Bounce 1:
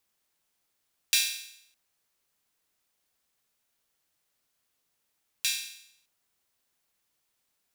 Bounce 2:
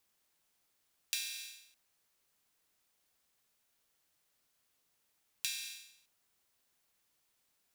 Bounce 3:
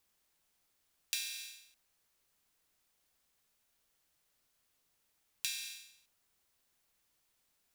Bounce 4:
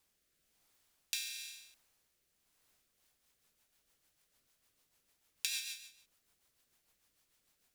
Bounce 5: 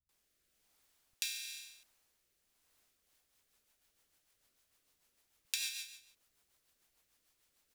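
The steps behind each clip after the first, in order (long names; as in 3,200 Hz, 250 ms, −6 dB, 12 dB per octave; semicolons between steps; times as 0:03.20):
downward compressor 8 to 1, threshold −34 dBFS, peak gain reduction 14 dB
low-shelf EQ 64 Hz +8 dB
rotating-speaker cabinet horn 1 Hz, later 6.7 Hz, at 0:02.57; level +4.5 dB
multiband delay without the direct sound lows, highs 90 ms, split 160 Hz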